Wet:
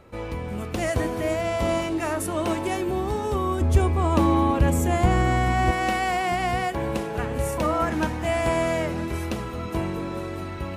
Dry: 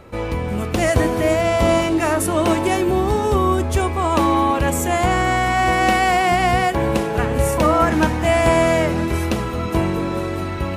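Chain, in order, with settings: 3.61–5.71 low shelf 360 Hz +11 dB; gain -8 dB

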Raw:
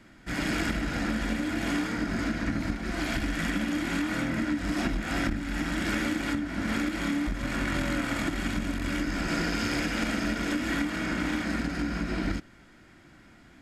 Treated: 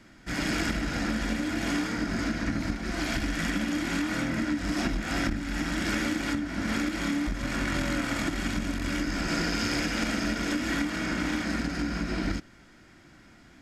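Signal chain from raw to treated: bell 5600 Hz +5 dB 0.68 oct

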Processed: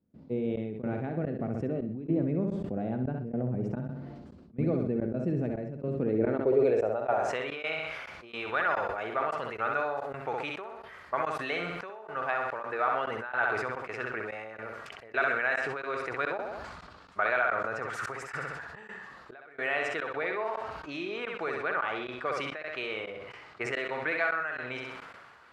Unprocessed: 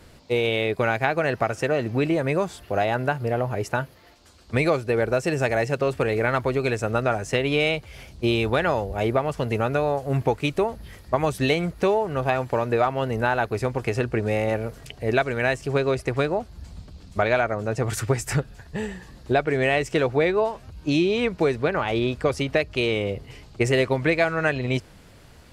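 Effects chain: dynamic EQ 980 Hz, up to -5 dB, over -37 dBFS, Q 1.9; in parallel at -2.5 dB: compressor, threshold -33 dBFS, peak gain reduction 15.5 dB; on the sum: band-pass sweep 210 Hz -> 1300 Hz, 5.89–7.54; on a send: flutter echo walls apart 11 m, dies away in 0.6 s; on the sum: step gate ".xxx..xxx" 108 bpm -24 dB; sustainer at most 31 dB/s

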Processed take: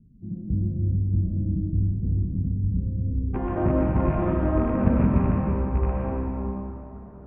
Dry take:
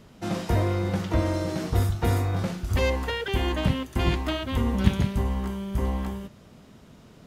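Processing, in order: rattling part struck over -21 dBFS, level -13 dBFS; inverse Chebyshev low-pass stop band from 1400 Hz, stop band 80 dB, from 3.33 s stop band from 7100 Hz; digital reverb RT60 2.7 s, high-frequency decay 0.65×, pre-delay 75 ms, DRR -3.5 dB; gain -1.5 dB

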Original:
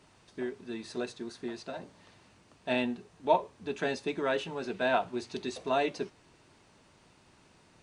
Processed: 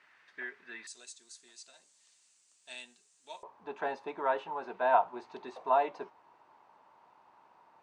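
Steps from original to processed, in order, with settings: band-pass 1800 Hz, Q 3.5, from 0.87 s 7600 Hz, from 3.43 s 920 Hz; gain +9 dB

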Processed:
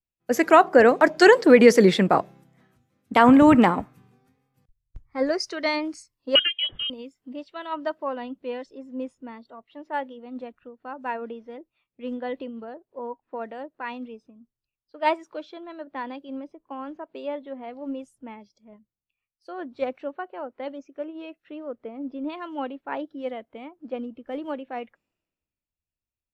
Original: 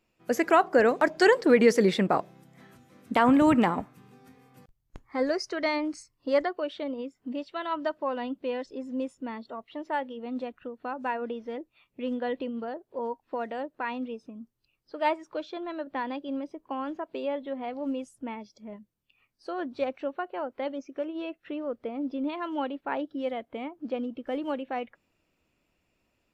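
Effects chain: 6.35–6.9 inverted band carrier 3500 Hz; vibrato 1.4 Hz 38 cents; three-band expander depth 70%

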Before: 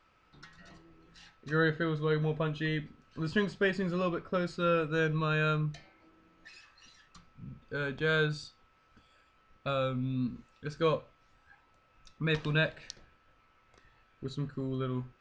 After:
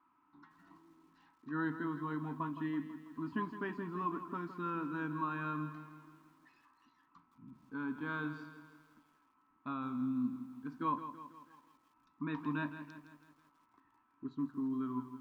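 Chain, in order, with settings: double band-pass 530 Hz, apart 1.8 oct; lo-fi delay 0.164 s, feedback 55%, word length 12-bit, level -11 dB; gain +5.5 dB

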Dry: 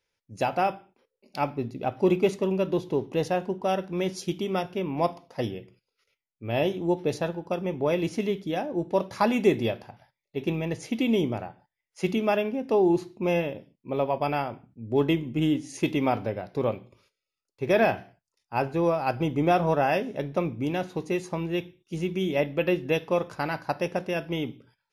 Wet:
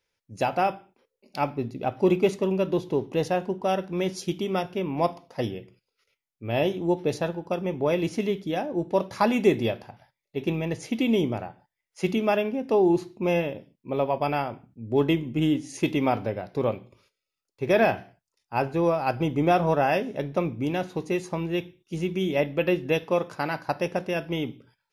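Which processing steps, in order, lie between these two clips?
23.03–23.69 HPF 120 Hz; gain +1 dB

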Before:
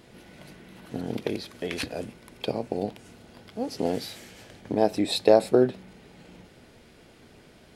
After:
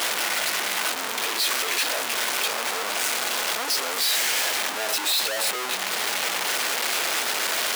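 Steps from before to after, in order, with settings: infinite clipping; HPF 850 Hz 12 dB/oct; gain +7.5 dB

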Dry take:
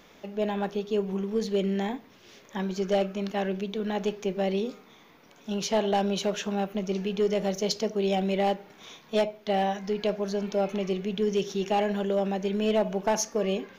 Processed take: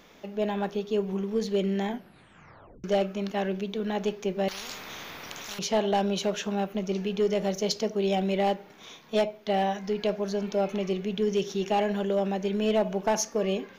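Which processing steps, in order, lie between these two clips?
1.87 tape stop 0.97 s; 4.48–5.59 spectral compressor 10:1

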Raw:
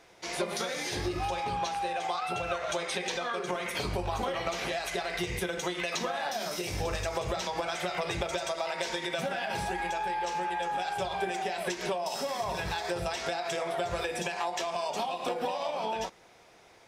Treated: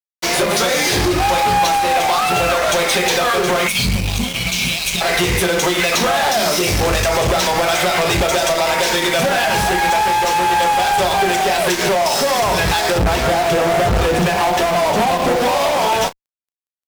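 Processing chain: 3.67–5.01 spectral gain 260–2100 Hz -21 dB; 12.98–15.36 RIAA curve playback; requantised 10-bit, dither triangular; fuzz box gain 38 dB, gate -44 dBFS; doubler 33 ms -14 dB

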